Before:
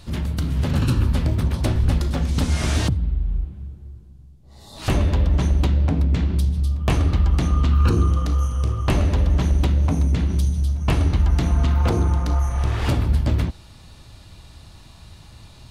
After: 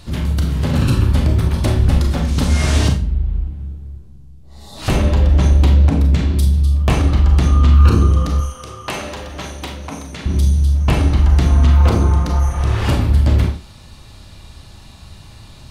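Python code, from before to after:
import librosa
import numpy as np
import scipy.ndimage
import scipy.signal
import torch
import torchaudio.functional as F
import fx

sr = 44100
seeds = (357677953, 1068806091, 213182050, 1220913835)

y = fx.high_shelf(x, sr, hz=6000.0, db=6.5, at=(5.7, 6.45))
y = fx.highpass(y, sr, hz=910.0, slope=6, at=(8.4, 10.26))
y = fx.rev_schroeder(y, sr, rt60_s=0.34, comb_ms=29, drr_db=3.5)
y = F.gain(torch.from_numpy(y), 3.5).numpy()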